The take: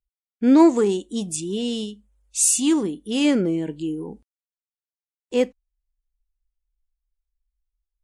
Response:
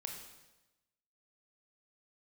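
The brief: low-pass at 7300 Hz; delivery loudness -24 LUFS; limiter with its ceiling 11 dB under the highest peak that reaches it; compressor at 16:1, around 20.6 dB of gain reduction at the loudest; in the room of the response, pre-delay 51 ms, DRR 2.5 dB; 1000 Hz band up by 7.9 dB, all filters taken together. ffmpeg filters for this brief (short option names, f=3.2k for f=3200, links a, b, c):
-filter_complex "[0:a]lowpass=7.3k,equalizer=f=1k:t=o:g=8.5,acompressor=threshold=-27dB:ratio=16,alimiter=level_in=4.5dB:limit=-24dB:level=0:latency=1,volume=-4.5dB,asplit=2[a][b];[1:a]atrim=start_sample=2205,adelay=51[c];[b][c]afir=irnorm=-1:irlink=0,volume=-0.5dB[d];[a][d]amix=inputs=2:normalize=0,volume=11dB"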